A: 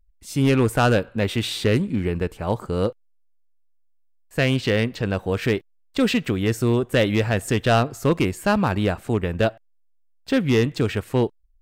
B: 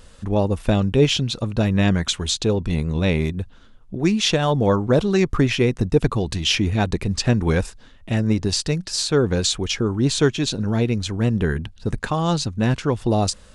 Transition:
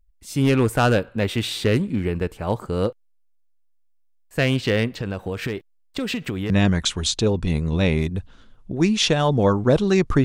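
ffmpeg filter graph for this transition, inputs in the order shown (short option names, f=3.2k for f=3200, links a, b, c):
-filter_complex "[0:a]asettb=1/sr,asplit=3[a][b][c];[a]atrim=end=4.904[d];[b]atrim=start=4.9:end=6.5,asetpts=PTS-STARTPTS,afade=t=in:d=0.004:c=qsin,afade=t=out:st=1.596:d=0.004:c=qsin,acompressor=threshold=-21dB:ratio=10:attack=3.2:release=140:knee=1:detection=peak[e];[c]atrim=start=6.496[f];[d][e]acrossfade=d=0.004:c1=hsin:c2=qsin[g];[g][f]acrossfade=d=0.004:c1=qsin:c2=hsin,apad=whole_dur=10.24,atrim=end=10.24,atrim=end=6.502[h];[1:a]atrim=start=1.728:end=5.47[i];[h][i]acrossfade=d=0.004:c1=hsin:c2=hsin"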